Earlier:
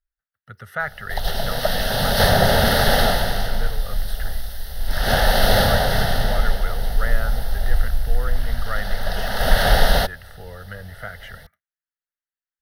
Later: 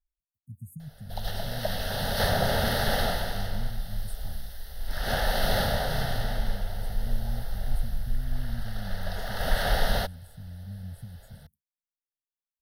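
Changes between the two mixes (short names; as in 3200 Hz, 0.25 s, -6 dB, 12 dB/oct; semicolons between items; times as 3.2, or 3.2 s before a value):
speech: add brick-wall FIR band-stop 270–6600 Hz; background -9.5 dB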